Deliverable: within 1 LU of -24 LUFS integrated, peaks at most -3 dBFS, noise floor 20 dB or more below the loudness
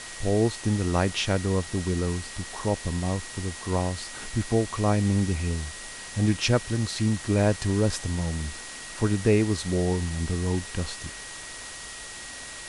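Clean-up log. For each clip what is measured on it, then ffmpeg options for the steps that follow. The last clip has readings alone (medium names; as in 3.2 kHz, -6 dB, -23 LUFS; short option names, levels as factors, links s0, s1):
steady tone 1.9 kHz; tone level -44 dBFS; noise floor -40 dBFS; noise floor target -48 dBFS; loudness -27.5 LUFS; peak level -9.0 dBFS; loudness target -24.0 LUFS
-> -af "bandreject=f=1900:w=30"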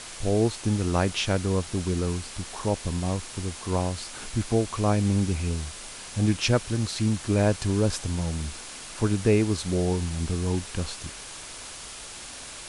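steady tone not found; noise floor -41 dBFS; noise floor target -47 dBFS
-> -af "afftdn=nr=6:nf=-41"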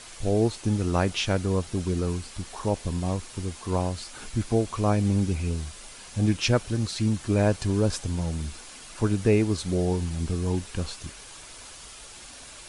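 noise floor -45 dBFS; noise floor target -47 dBFS
-> -af "afftdn=nr=6:nf=-45"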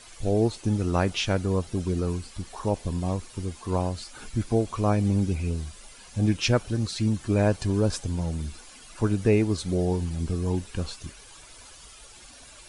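noise floor -49 dBFS; loudness -27.0 LUFS; peak level -9.0 dBFS; loudness target -24.0 LUFS
-> -af "volume=1.41"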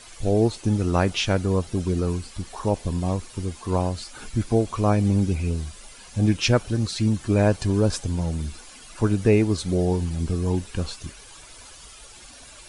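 loudness -24.0 LUFS; peak level -6.0 dBFS; noise floor -46 dBFS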